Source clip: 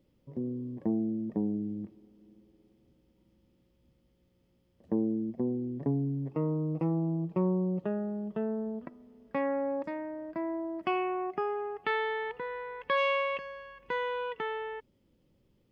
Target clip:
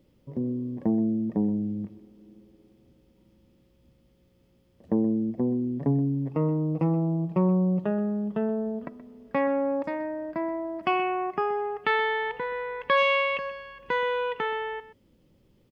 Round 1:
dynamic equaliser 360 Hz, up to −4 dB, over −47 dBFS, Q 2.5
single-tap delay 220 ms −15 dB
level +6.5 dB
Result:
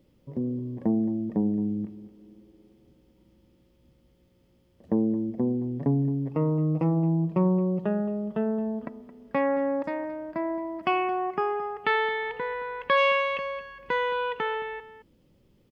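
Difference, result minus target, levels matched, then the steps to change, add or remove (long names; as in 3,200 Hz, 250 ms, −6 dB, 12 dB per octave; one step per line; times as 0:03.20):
echo 94 ms late
change: single-tap delay 126 ms −15 dB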